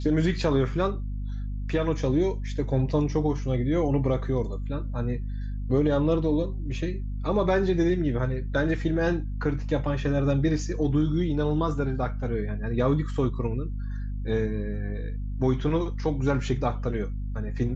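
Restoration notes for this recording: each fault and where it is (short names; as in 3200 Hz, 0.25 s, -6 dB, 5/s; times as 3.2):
hum 50 Hz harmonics 5 -31 dBFS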